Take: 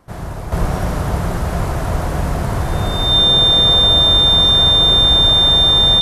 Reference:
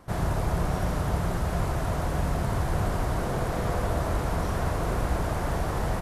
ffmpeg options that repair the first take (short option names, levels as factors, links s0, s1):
-filter_complex "[0:a]bandreject=f=3600:w=30,asplit=3[s0][s1][s2];[s0]afade=t=out:st=0.59:d=0.02[s3];[s1]highpass=f=140:w=0.5412,highpass=f=140:w=1.3066,afade=t=in:st=0.59:d=0.02,afade=t=out:st=0.71:d=0.02[s4];[s2]afade=t=in:st=0.71:d=0.02[s5];[s3][s4][s5]amix=inputs=3:normalize=0,asplit=3[s6][s7][s8];[s6]afade=t=out:st=1.91:d=0.02[s9];[s7]highpass=f=140:w=0.5412,highpass=f=140:w=1.3066,afade=t=in:st=1.91:d=0.02,afade=t=out:st=2.03:d=0.02[s10];[s8]afade=t=in:st=2.03:d=0.02[s11];[s9][s10][s11]amix=inputs=3:normalize=0,asplit=3[s12][s13][s14];[s12]afade=t=out:st=5.23:d=0.02[s15];[s13]highpass=f=140:w=0.5412,highpass=f=140:w=1.3066,afade=t=in:st=5.23:d=0.02,afade=t=out:st=5.35:d=0.02[s16];[s14]afade=t=in:st=5.35:d=0.02[s17];[s15][s16][s17]amix=inputs=3:normalize=0,asetnsamples=n=441:p=0,asendcmd='0.52 volume volume -8dB',volume=1"